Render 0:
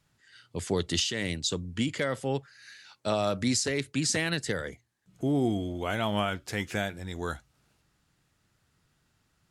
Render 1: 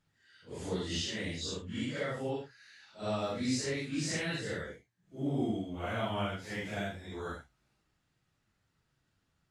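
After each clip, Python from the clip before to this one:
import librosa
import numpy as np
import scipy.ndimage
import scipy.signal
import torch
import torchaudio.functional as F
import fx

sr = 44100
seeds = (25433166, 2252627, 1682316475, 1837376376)

y = fx.phase_scramble(x, sr, seeds[0], window_ms=200)
y = fx.high_shelf(y, sr, hz=8700.0, db=-10.5)
y = y * librosa.db_to_amplitude(-5.5)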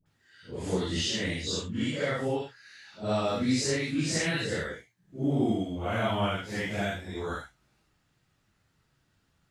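y = fx.dispersion(x, sr, late='highs', ms=60.0, hz=760.0)
y = y * librosa.db_to_amplitude(6.0)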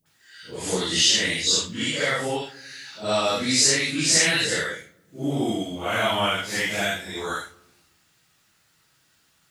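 y = fx.tilt_eq(x, sr, slope=3.0)
y = fx.room_shoebox(y, sr, seeds[1], volume_m3=3800.0, walls='furnished', distance_m=0.61)
y = y * librosa.db_to_amplitude(6.5)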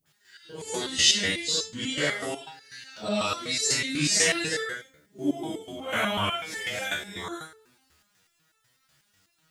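y = fx.resonator_held(x, sr, hz=8.1, low_hz=74.0, high_hz=440.0)
y = y * librosa.db_to_amplitude(7.0)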